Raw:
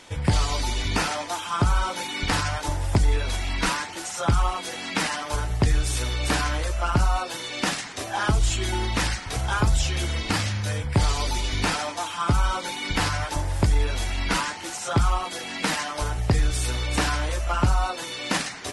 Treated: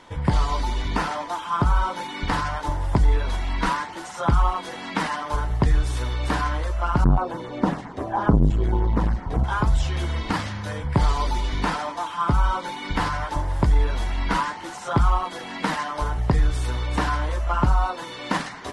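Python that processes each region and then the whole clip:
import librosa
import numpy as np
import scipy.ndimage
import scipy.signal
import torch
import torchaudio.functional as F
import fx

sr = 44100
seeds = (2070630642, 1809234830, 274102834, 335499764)

y = fx.chain(x, sr, fx.tilt_shelf(db=9.5, hz=1400.0),
    fx.filter_lfo_notch(shape='saw_down', hz=7.4, low_hz=890.0, high_hz=5700.0, q=1.8),
    fx.transformer_sat(knee_hz=230.0), at=(7.04, 9.44))
y = fx.graphic_eq_31(y, sr, hz=(100, 1000, 2500), db=(-9, 7, -6))
y = fx.rider(y, sr, range_db=10, speed_s=2.0)
y = fx.bass_treble(y, sr, bass_db=3, treble_db=-11)
y = F.gain(torch.from_numpy(y), -1.0).numpy()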